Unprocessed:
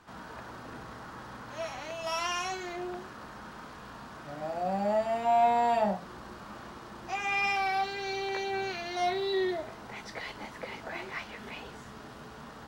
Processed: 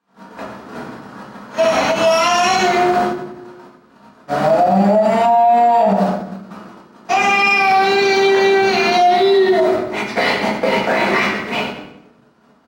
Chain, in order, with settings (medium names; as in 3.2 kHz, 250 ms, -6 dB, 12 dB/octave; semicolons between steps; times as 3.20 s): gate -41 dBFS, range -36 dB; high-pass 190 Hz 12 dB/octave; bass shelf 420 Hz +6 dB; compression, threshold -30 dBFS, peak gain reduction 11 dB; feedback delay 95 ms, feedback 36%, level -11.5 dB; reverberation RT60 0.75 s, pre-delay 4 ms, DRR -5 dB; loudness maximiser +23 dB; endings held to a fixed fall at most 110 dB/s; trim -5 dB